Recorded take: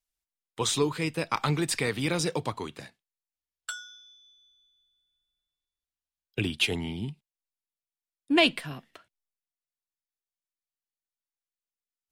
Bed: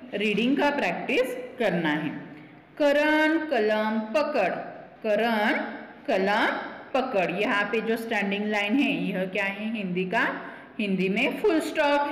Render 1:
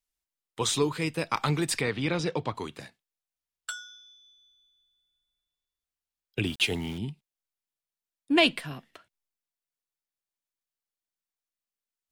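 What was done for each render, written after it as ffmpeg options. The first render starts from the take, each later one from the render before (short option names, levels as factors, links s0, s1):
-filter_complex "[0:a]asettb=1/sr,asplit=3[s0][s1][s2];[s0]atrim=end=1.814[s3];[s1]atrim=start=1.81:end=2.55,asetpts=PTS-STARTPTS,afade=t=in:d=0.004:c=qsin,afade=t=out:st=0.736:d=0.004:c=qsin,lowpass=4100[s4];[s2]atrim=start=2.546[s5];[s3][s4]acrossfade=d=0.004:c1=hsin:c2=qsin[s6];[s6][s5]acrossfade=d=0.004:c1=qsin:c2=hsin,asettb=1/sr,asplit=3[s7][s8][s9];[s7]atrim=end=6.464[s10];[s8]atrim=start=6.46:end=6.98,asetpts=PTS-STARTPTS,afade=t=in:d=0.004:c=qsin,afade=t=out:st=0.516:d=0.004:c=qsin,aeval=exprs='val(0)*gte(abs(val(0)),0.00708)':c=same[s11];[s9]atrim=start=6.976[s12];[s10][s11]acrossfade=d=0.004:c1=hsin:c2=qsin[s13];[s13][s12]acrossfade=d=0.004:c1=qsin:c2=hsin"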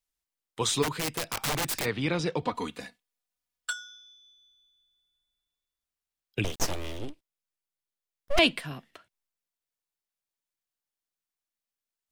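-filter_complex "[0:a]asplit=3[s0][s1][s2];[s0]afade=t=out:st=0.82:d=0.02[s3];[s1]aeval=exprs='(mod(15.8*val(0)+1,2)-1)/15.8':c=same,afade=t=in:st=0.82:d=0.02,afade=t=out:st=1.84:d=0.02[s4];[s2]afade=t=in:st=1.84:d=0.02[s5];[s3][s4][s5]amix=inputs=3:normalize=0,asettb=1/sr,asplit=3[s6][s7][s8];[s6]atrim=end=2.424[s9];[s7]atrim=start=2.42:end=3.73,asetpts=PTS-STARTPTS,afade=t=in:d=0.004:c=qsin,afade=t=out:st=1.306:d=0.004:c=qsin,aecho=1:1:4.1:0.93,atrim=end_sample=57771[s10];[s8]atrim=start=3.726[s11];[s9][s10]acrossfade=d=0.004:c1=hsin:c2=qsin[s12];[s12][s11]acrossfade=d=0.004:c1=qsin:c2=hsin,asettb=1/sr,asplit=3[s13][s14][s15];[s13]atrim=end=6.444[s16];[s14]atrim=start=6.44:end=8.39,asetpts=PTS-STARTPTS,afade=t=in:d=0.004:c=qsin,afade=t=out:st=1.946:d=0.004:c=qsin,aeval=exprs='abs(val(0))':c=same[s17];[s15]atrim=start=8.386[s18];[s16][s17]acrossfade=d=0.004:c1=hsin:c2=qsin[s19];[s19][s18]acrossfade=d=0.004:c1=qsin:c2=hsin"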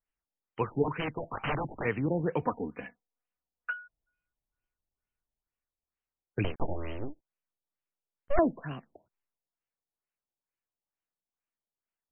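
-af "afftfilt=real='re*lt(b*sr/1024,870*pow(3200/870,0.5+0.5*sin(2*PI*2.2*pts/sr)))':imag='im*lt(b*sr/1024,870*pow(3200/870,0.5+0.5*sin(2*PI*2.2*pts/sr)))':win_size=1024:overlap=0.75"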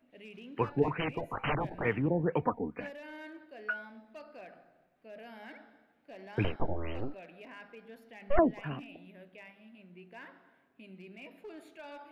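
-filter_complex "[1:a]volume=0.0562[s0];[0:a][s0]amix=inputs=2:normalize=0"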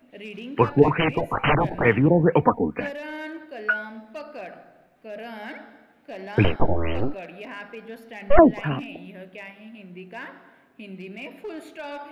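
-af "volume=3.98,alimiter=limit=0.708:level=0:latency=1"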